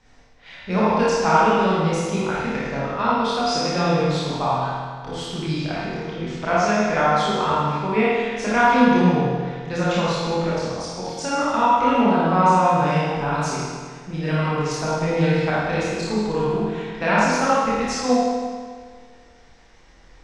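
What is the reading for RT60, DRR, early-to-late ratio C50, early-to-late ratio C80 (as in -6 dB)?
1.7 s, -9.0 dB, -5.0 dB, -1.5 dB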